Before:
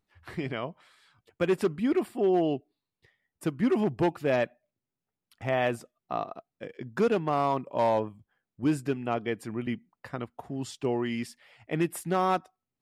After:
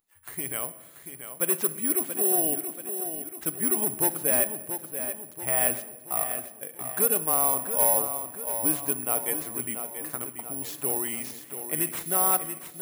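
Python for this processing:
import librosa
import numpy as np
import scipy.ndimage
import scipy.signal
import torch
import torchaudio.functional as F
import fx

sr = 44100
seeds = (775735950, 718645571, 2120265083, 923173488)

p1 = fx.low_shelf(x, sr, hz=360.0, db=-9.5)
p2 = p1 + fx.echo_feedback(p1, sr, ms=683, feedback_pct=50, wet_db=-9.0, dry=0)
p3 = fx.room_shoebox(p2, sr, seeds[0], volume_m3=950.0, walls='mixed', distance_m=0.36)
p4 = (np.kron(p3[::4], np.eye(4)[0]) * 4)[:len(p3)]
y = F.gain(torch.from_numpy(p4), -1.5).numpy()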